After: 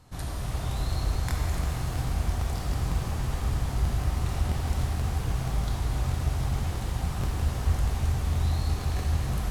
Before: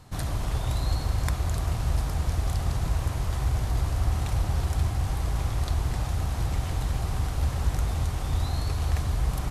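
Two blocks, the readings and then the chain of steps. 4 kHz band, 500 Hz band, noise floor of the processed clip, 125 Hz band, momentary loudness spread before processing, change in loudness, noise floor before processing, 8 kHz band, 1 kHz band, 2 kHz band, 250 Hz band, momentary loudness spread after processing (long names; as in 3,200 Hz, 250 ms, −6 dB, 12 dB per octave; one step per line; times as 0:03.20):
−1.0 dB, −0.5 dB, −33 dBFS, −1.0 dB, 2 LU, −1.0 dB, −31 dBFS, −1.0 dB, −1.0 dB, 0.0 dB, +1.0 dB, 3 LU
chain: regular buffer underruns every 0.16 s, samples 1,024, repeat, from 0:00.95
reverb with rising layers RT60 3.1 s, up +7 semitones, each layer −8 dB, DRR −1.5 dB
level −5.5 dB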